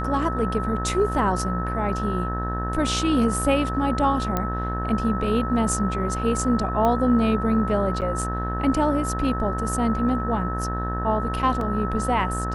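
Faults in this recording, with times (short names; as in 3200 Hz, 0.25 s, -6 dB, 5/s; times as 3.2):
buzz 60 Hz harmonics 31 -28 dBFS
tone 1300 Hz -29 dBFS
4.37 pop -10 dBFS
6.85 pop -12 dBFS
8.01–8.02 gap 8.4 ms
11.61 gap 2.4 ms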